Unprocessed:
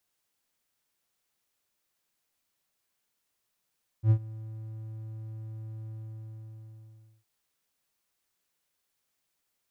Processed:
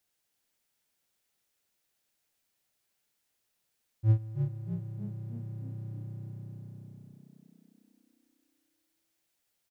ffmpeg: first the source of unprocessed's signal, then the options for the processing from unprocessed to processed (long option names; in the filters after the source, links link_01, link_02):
-f lavfi -i "aevalsrc='0.2*(1-4*abs(mod(110*t+0.25,1)-0.5))':duration=3.21:sample_rate=44100,afade=type=in:duration=0.076,afade=type=out:start_time=0.076:duration=0.075:silence=0.0841,afade=type=out:start_time=1.87:duration=1.34"
-filter_complex "[0:a]equalizer=frequency=1100:width=3.3:gain=-5,asplit=2[link_01][link_02];[link_02]asplit=7[link_03][link_04][link_05][link_06][link_07][link_08][link_09];[link_03]adelay=312,afreqshift=31,volume=-7.5dB[link_10];[link_04]adelay=624,afreqshift=62,volume=-12.9dB[link_11];[link_05]adelay=936,afreqshift=93,volume=-18.2dB[link_12];[link_06]adelay=1248,afreqshift=124,volume=-23.6dB[link_13];[link_07]adelay=1560,afreqshift=155,volume=-28.9dB[link_14];[link_08]adelay=1872,afreqshift=186,volume=-34.3dB[link_15];[link_09]adelay=2184,afreqshift=217,volume=-39.6dB[link_16];[link_10][link_11][link_12][link_13][link_14][link_15][link_16]amix=inputs=7:normalize=0[link_17];[link_01][link_17]amix=inputs=2:normalize=0"